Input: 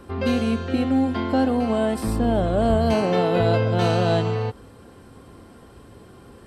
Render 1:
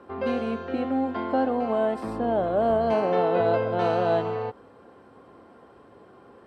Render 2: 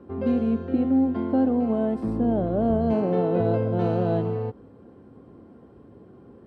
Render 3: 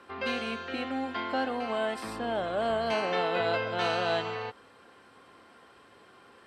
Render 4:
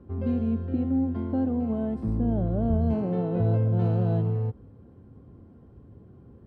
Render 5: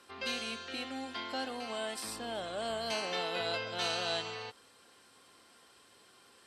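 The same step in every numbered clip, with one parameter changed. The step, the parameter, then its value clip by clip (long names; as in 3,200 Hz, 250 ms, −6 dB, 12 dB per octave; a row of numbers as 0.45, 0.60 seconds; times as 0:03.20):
resonant band-pass, frequency: 760, 270, 2,000, 110, 5,100 Hertz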